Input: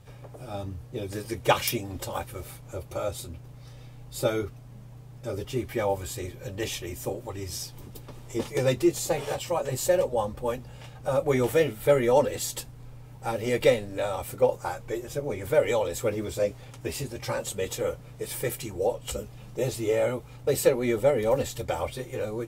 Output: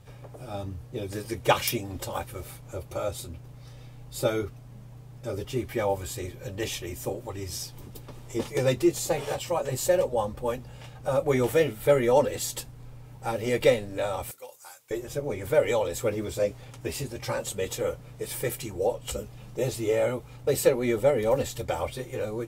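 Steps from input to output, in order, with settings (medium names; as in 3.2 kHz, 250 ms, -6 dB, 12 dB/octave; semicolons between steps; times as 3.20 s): 14.31–14.91 s: differentiator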